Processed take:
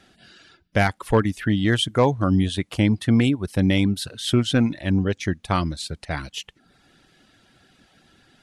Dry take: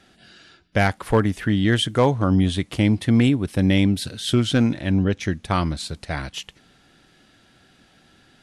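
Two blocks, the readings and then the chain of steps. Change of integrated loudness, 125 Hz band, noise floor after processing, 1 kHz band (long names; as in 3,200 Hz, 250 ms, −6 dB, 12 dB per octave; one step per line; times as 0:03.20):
−1.0 dB, −1.5 dB, −63 dBFS, −0.5 dB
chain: reverb reduction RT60 0.6 s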